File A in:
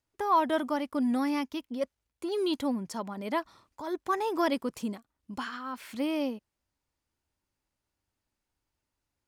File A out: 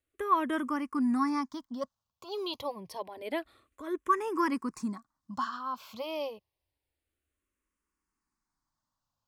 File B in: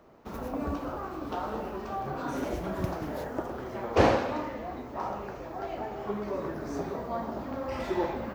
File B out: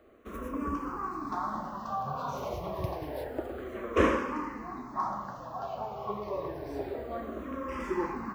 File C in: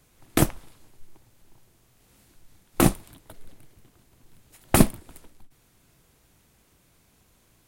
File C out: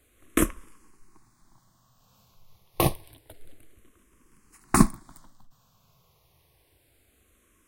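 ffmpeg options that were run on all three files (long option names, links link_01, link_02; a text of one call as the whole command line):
ffmpeg -i in.wav -filter_complex "[0:a]equalizer=frequency=1100:width=7.3:gain=11,asplit=2[link_01][link_02];[link_02]afreqshift=-0.28[link_03];[link_01][link_03]amix=inputs=2:normalize=1" out.wav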